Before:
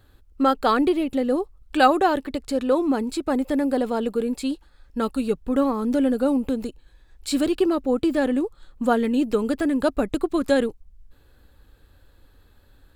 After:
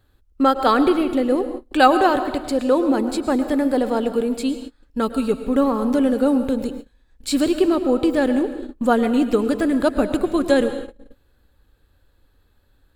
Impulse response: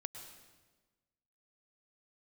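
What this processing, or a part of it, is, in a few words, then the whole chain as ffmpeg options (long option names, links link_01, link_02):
keyed gated reverb: -filter_complex "[0:a]asplit=3[link_01][link_02][link_03];[1:a]atrim=start_sample=2205[link_04];[link_02][link_04]afir=irnorm=-1:irlink=0[link_05];[link_03]apad=whole_len=571125[link_06];[link_05][link_06]sidechaingate=range=-33dB:threshold=-42dB:ratio=16:detection=peak,volume=8dB[link_07];[link_01][link_07]amix=inputs=2:normalize=0,volume=-5.5dB"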